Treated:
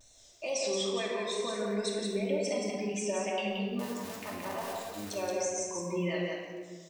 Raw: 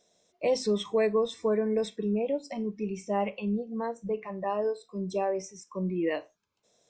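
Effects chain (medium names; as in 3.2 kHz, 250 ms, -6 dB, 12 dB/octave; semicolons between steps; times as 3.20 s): 3.79–5.15 s: cycle switcher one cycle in 2, muted; tilt EQ +3.5 dB/octave; compression, threshold -34 dBFS, peak gain reduction 10 dB; peak limiter -27.5 dBFS, peak gain reduction 10 dB; wow and flutter 120 cents; delay 175 ms -4 dB; simulated room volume 1800 m³, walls mixed, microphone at 2.6 m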